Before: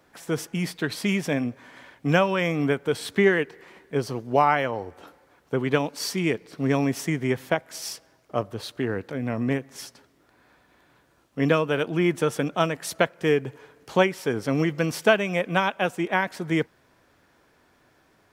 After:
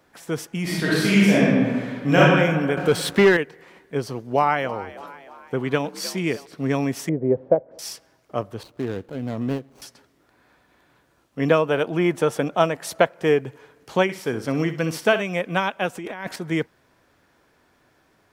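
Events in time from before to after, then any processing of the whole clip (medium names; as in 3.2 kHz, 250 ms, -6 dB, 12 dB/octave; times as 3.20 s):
0.62–2.19 s: reverb throw, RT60 1.7 s, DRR -8 dB
2.77–3.37 s: waveshaping leveller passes 2
4.07–6.46 s: frequency-shifting echo 310 ms, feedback 53%, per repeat +63 Hz, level -16 dB
7.09–7.79 s: resonant low-pass 540 Hz, resonance Q 3.9
8.63–9.82 s: median filter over 25 samples
11.48–13.41 s: peaking EQ 700 Hz +6 dB 1.4 oct
14.03–15.22 s: flutter echo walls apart 10.6 m, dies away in 0.31 s
15.95–16.36 s: compressor with a negative ratio -32 dBFS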